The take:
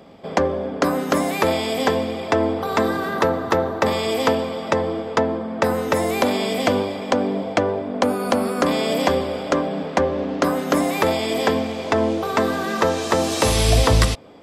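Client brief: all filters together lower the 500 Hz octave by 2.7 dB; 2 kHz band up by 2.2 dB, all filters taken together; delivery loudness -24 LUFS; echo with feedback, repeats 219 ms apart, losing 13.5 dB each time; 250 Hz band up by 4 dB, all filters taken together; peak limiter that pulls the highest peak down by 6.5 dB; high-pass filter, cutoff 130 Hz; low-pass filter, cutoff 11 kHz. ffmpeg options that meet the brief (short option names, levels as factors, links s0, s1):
-af "highpass=130,lowpass=11000,equalizer=f=250:t=o:g=6.5,equalizer=f=500:t=o:g=-5,equalizer=f=2000:t=o:g=3,alimiter=limit=0.316:level=0:latency=1,aecho=1:1:219|438:0.211|0.0444,volume=0.75"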